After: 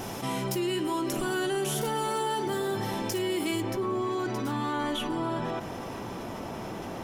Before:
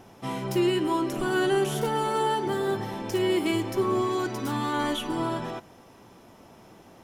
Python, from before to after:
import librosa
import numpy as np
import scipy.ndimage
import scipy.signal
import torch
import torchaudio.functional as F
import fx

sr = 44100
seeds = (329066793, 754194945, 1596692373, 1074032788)

y = fx.high_shelf(x, sr, hz=4000.0, db=fx.steps((0.0, 8.0), (3.6, -5.0)))
y = fx.env_flatten(y, sr, amount_pct=70)
y = F.gain(torch.from_numpy(y), -7.0).numpy()